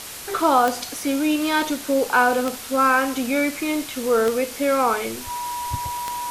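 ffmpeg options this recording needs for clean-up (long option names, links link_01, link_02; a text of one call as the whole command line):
ffmpeg -i in.wav -af "adeclick=threshold=4,bandreject=frequency=970:width=30,afwtdn=0.02" out.wav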